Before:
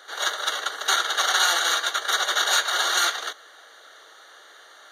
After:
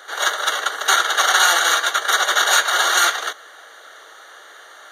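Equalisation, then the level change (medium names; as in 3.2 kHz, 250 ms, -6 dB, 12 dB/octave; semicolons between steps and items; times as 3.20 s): bass shelf 240 Hz -6.5 dB; peaking EQ 4.3 kHz -5.5 dB 0.86 oct; +7.5 dB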